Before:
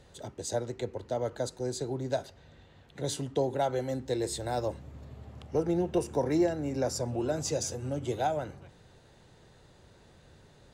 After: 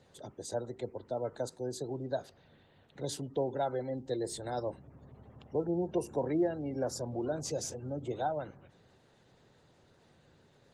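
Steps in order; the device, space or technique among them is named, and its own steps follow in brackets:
0:03.02–0:03.61: dynamic equaliser 5,000 Hz, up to +4 dB, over −54 dBFS, Q 4.4
noise-suppressed video call (high-pass filter 110 Hz 12 dB per octave; gate on every frequency bin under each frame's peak −30 dB strong; level −3.5 dB; Opus 20 kbit/s 48,000 Hz)

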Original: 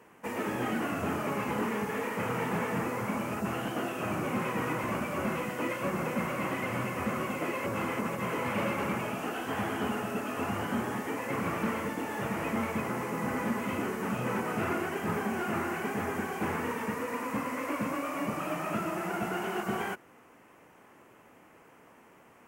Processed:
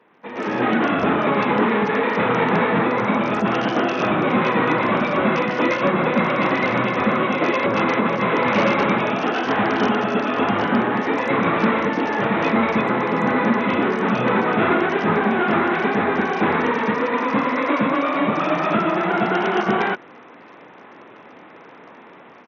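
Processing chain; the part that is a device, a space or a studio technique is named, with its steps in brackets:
Bluetooth headset (high-pass filter 170 Hz 12 dB per octave; automatic gain control gain up to 14 dB; downsampling to 16,000 Hz; SBC 64 kbit/s 48,000 Hz)

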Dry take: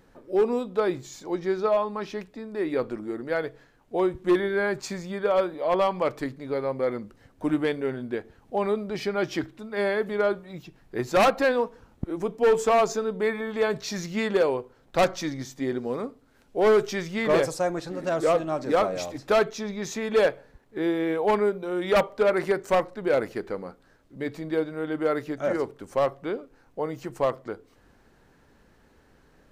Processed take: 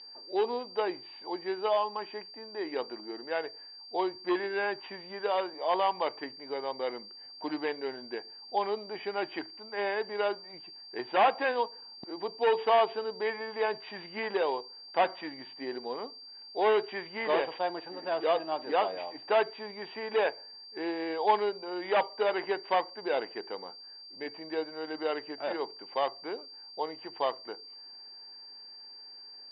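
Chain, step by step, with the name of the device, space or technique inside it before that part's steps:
toy sound module (linearly interpolated sample-rate reduction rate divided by 4×; switching amplifier with a slow clock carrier 4,700 Hz; loudspeaker in its box 540–3,700 Hz, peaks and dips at 560 Hz −7 dB, 880 Hz +5 dB, 1,300 Hz −9 dB, 3,000 Hz +5 dB)

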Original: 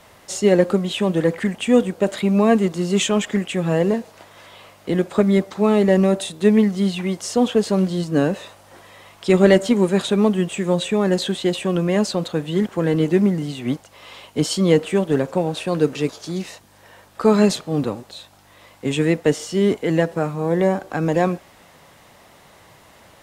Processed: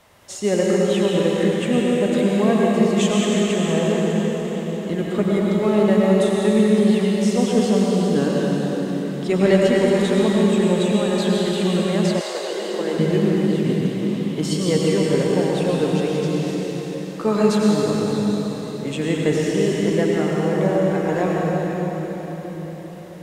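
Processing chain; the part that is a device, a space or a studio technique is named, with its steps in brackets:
cathedral (convolution reverb RT60 4.9 s, pre-delay 86 ms, DRR −4 dB)
0:12.19–0:12.98: high-pass filter 550 Hz → 250 Hz 24 dB per octave
level −5.5 dB

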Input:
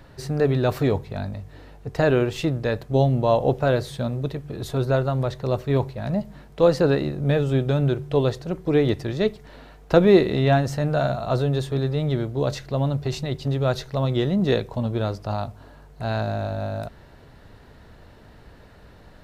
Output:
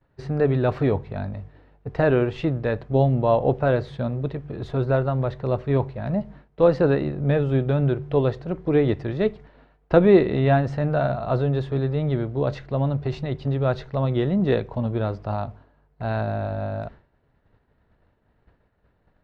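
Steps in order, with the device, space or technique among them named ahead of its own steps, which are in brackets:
hearing-loss simulation (low-pass filter 2,500 Hz 12 dB per octave; downward expander −36 dBFS)

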